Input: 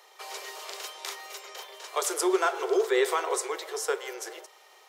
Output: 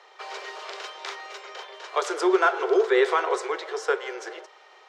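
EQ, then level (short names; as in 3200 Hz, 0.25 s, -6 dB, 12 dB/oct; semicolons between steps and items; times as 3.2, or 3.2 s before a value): air absorption 150 m; bell 1500 Hz +4 dB 0.4 oct; +4.5 dB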